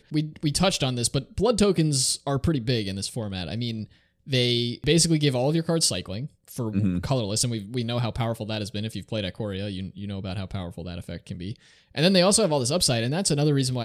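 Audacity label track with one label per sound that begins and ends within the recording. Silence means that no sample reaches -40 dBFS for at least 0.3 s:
4.270000	11.560000	sound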